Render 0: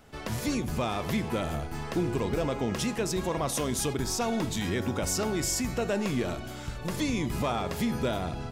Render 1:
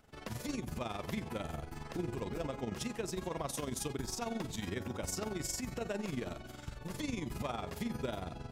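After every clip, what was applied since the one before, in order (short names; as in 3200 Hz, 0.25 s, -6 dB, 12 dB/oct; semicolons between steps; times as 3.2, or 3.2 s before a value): AM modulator 22 Hz, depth 50%; gain -6.5 dB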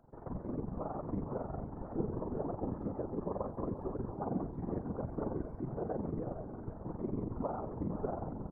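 inverse Chebyshev low-pass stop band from 2700 Hz, stop band 50 dB; echo 0.479 s -11 dB; whisperiser; gain +1.5 dB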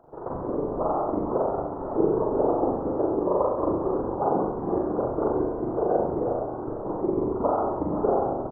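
band shelf 650 Hz +12.5 dB 2.5 oct; doubler 40 ms -2.5 dB; flutter echo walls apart 11.5 m, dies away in 0.82 s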